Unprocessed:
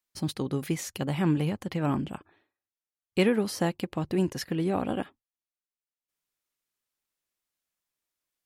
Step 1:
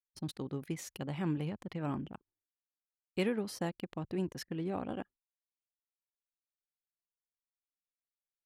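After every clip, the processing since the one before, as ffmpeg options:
-af "anlmdn=0.631,volume=-9dB"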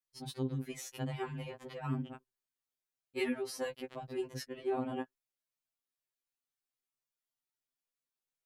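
-af "afftfilt=real='re*2.45*eq(mod(b,6),0)':imag='im*2.45*eq(mod(b,6),0)':win_size=2048:overlap=0.75,volume=3dB"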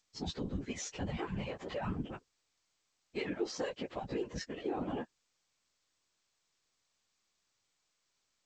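-af "alimiter=level_in=9.5dB:limit=-24dB:level=0:latency=1:release=226,volume=-9.5dB,afftfilt=real='hypot(re,im)*cos(2*PI*random(0))':imag='hypot(re,im)*sin(2*PI*random(1))':win_size=512:overlap=0.75,volume=11dB" -ar 16000 -c:a g722

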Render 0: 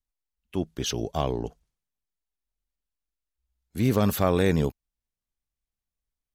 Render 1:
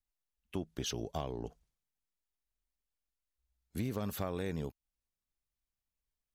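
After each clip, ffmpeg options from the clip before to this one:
-af "acompressor=threshold=-30dB:ratio=6,volume=-3.5dB"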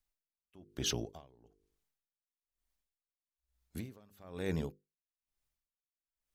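-af "bandreject=f=50:t=h:w=6,bandreject=f=100:t=h:w=6,bandreject=f=150:t=h:w=6,bandreject=f=200:t=h:w=6,bandreject=f=250:t=h:w=6,bandreject=f=300:t=h:w=6,bandreject=f=350:t=h:w=6,bandreject=f=400:t=h:w=6,bandreject=f=450:t=h:w=6,bandreject=f=500:t=h:w=6,aeval=exprs='val(0)*pow(10,-29*(0.5-0.5*cos(2*PI*1.1*n/s))/20)':c=same,volume=4.5dB"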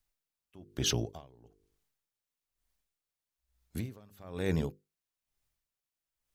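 -af "equalizer=f=110:t=o:w=0.56:g=5,volume=4dB"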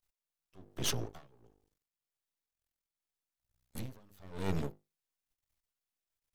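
-af "aeval=exprs='max(val(0),0)':c=same,volume=1.5dB"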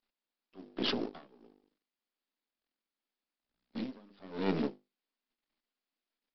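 -af "lowshelf=f=160:t=q:w=3:g=-13.5,aresample=11025,acrusher=bits=5:mode=log:mix=0:aa=0.000001,aresample=44100,volume=3dB"

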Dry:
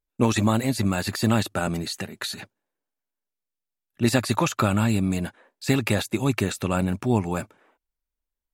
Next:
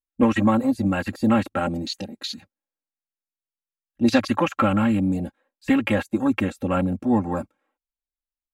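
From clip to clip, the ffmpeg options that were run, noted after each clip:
-af "afwtdn=0.0251,aecho=1:1:3.7:0.89"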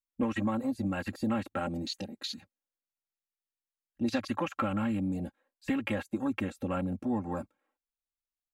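-af "acompressor=threshold=-25dB:ratio=2,volume=-6dB"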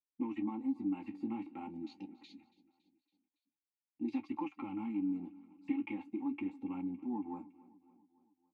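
-filter_complex "[0:a]asplit=3[a][b][c];[a]bandpass=f=300:t=q:w=8,volume=0dB[d];[b]bandpass=f=870:t=q:w=8,volume=-6dB[e];[c]bandpass=f=2.24k:t=q:w=8,volume=-9dB[f];[d][e][f]amix=inputs=3:normalize=0,flanger=delay=9.7:depth=8.8:regen=-41:speed=0.45:shape=triangular,aecho=1:1:280|560|840|1120:0.0944|0.0538|0.0307|0.0175,volume=6dB"

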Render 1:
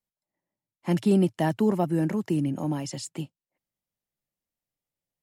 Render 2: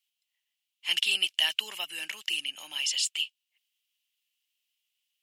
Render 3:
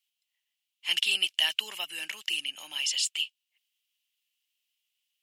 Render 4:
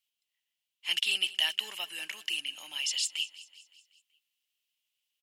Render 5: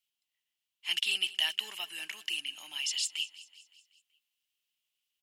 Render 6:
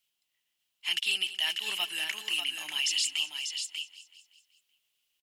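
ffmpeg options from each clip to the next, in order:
-af "highpass=f=2.9k:t=q:w=6.1,volume=7dB"
-af anull
-af "aecho=1:1:189|378|567|756|945:0.126|0.068|0.0367|0.0198|0.0107,volume=-2.5dB"
-af "equalizer=f=530:w=7.1:g=-10,volume=-1.5dB"
-filter_complex "[0:a]alimiter=level_in=0.5dB:limit=-24dB:level=0:latency=1:release=83,volume=-0.5dB,asplit=2[a][b];[b]aecho=0:1:592:0.473[c];[a][c]amix=inputs=2:normalize=0,volume=6dB"

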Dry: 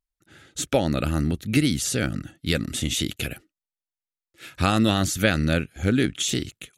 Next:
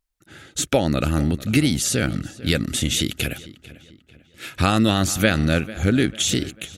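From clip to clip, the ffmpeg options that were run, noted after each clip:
-filter_complex "[0:a]asplit=2[a][b];[b]acompressor=threshold=-29dB:ratio=6,volume=1.5dB[c];[a][c]amix=inputs=2:normalize=0,asplit=2[d][e];[e]adelay=445,lowpass=f=4k:p=1,volume=-17.5dB,asplit=2[f][g];[g]adelay=445,lowpass=f=4k:p=1,volume=0.44,asplit=2[h][i];[i]adelay=445,lowpass=f=4k:p=1,volume=0.44,asplit=2[j][k];[k]adelay=445,lowpass=f=4k:p=1,volume=0.44[l];[d][f][h][j][l]amix=inputs=5:normalize=0"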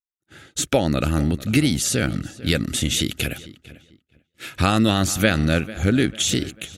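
-af "agate=range=-33dB:threshold=-41dB:ratio=3:detection=peak"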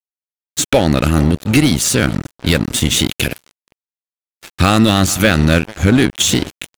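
-af "aeval=exprs='sgn(val(0))*max(abs(val(0))-0.0282,0)':c=same,apsyclip=12.5dB,volume=-3dB"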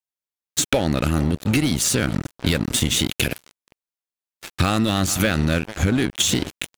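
-af "acompressor=threshold=-16dB:ratio=6"

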